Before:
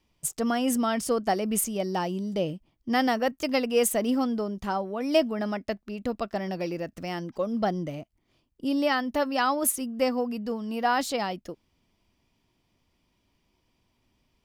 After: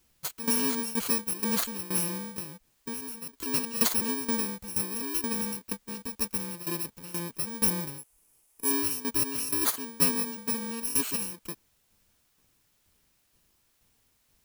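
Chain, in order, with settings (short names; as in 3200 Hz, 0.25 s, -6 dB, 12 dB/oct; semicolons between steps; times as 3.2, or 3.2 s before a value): FFT order left unsorted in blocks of 64 samples; tremolo saw down 2.1 Hz, depth 85%; requantised 12-bit, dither triangular; 2.31–3.46 compressor 10:1, threshold -36 dBFS, peak gain reduction 15 dB; 7.98–8.71 fifteen-band EQ 100 Hz -11 dB, 250 Hz -5 dB, 1600 Hz -4 dB, 4000 Hz -7 dB, 10000 Hz +11 dB; gain +1.5 dB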